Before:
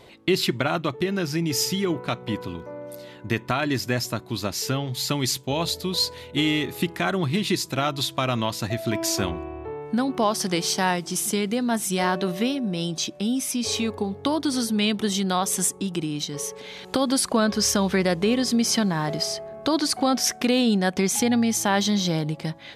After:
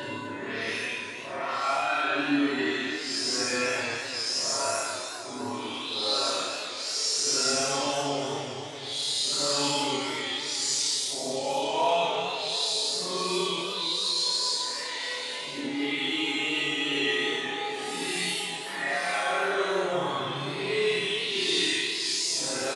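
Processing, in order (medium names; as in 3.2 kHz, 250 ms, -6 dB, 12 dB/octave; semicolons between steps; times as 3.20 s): recorder AGC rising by 13 dB/s; high-pass 510 Hz 12 dB/octave; comb 7.3 ms, depth 93%; peak limiter -21.5 dBFS, peak gain reduction 15 dB; phase dispersion highs, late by 87 ms, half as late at 2.6 kHz; Paulstretch 5×, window 0.10 s, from 3.23 s; flutter echo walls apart 4.8 m, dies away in 0.54 s; resampled via 22.05 kHz; modulated delay 255 ms, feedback 60%, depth 137 cents, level -9 dB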